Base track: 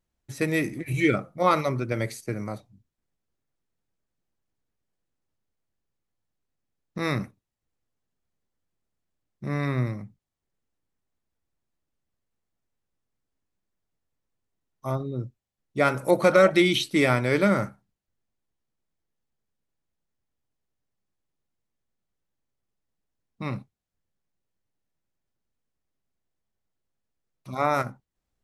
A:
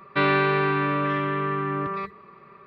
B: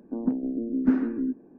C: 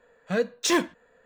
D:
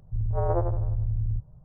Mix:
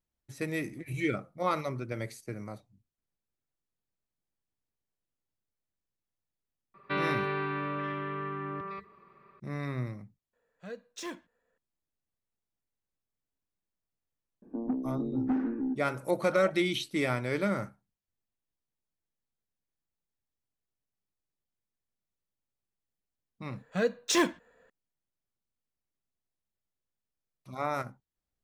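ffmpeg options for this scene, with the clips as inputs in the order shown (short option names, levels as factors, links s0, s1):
-filter_complex "[3:a]asplit=2[s0][s1];[0:a]volume=0.376[s2];[2:a]asoftclip=type=tanh:threshold=0.0944[s3];[1:a]atrim=end=2.66,asetpts=PTS-STARTPTS,volume=0.316,afade=t=in:d=0.004:c=hsin,afade=t=out:st=2.656:d=0.004:c=hsin,adelay=297234S[s4];[s0]atrim=end=1.25,asetpts=PTS-STARTPTS,volume=0.133,afade=t=in:d=0.004:c=hsin,afade=t=out:st=1.246:d=0.004:c=hsin,adelay=10330[s5];[s3]atrim=end=1.58,asetpts=PTS-STARTPTS,volume=0.708,afade=t=in:d=0.004:c=hsin,afade=t=out:st=1.576:d=0.004:c=hsin,adelay=14420[s6];[s1]atrim=end=1.25,asetpts=PTS-STARTPTS,volume=0.708,afade=t=in:d=0.004:c=hsin,afade=t=out:st=1.246:d=0.004:c=hsin,adelay=23450[s7];[s2][s4][s5][s6][s7]amix=inputs=5:normalize=0"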